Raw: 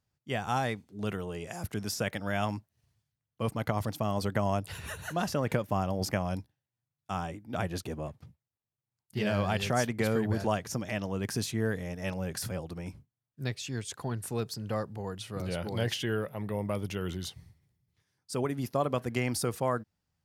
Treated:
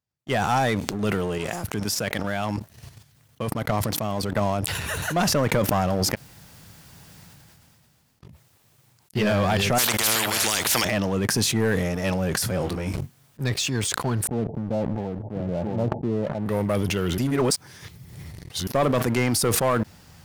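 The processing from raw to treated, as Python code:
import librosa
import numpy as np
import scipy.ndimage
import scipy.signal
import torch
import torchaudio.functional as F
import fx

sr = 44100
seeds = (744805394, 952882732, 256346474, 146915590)

y = fx.level_steps(x, sr, step_db=9, at=(1.38, 4.68))
y = fx.spectral_comp(y, sr, ratio=10.0, at=(9.78, 10.85))
y = fx.doubler(y, sr, ms=21.0, db=-6.0, at=(12.58, 13.42))
y = fx.cheby_ripple(y, sr, hz=890.0, ripple_db=6, at=(14.27, 16.46))
y = fx.edit(y, sr, fx.room_tone_fill(start_s=6.11, length_s=2.1, crossfade_s=0.1),
    fx.reverse_span(start_s=17.18, length_s=1.49), tone=tone)
y = fx.low_shelf(y, sr, hz=68.0, db=-6.5)
y = fx.leveller(y, sr, passes=3)
y = fx.sustainer(y, sr, db_per_s=21.0)
y = y * 10.0 ** (-1.0 / 20.0)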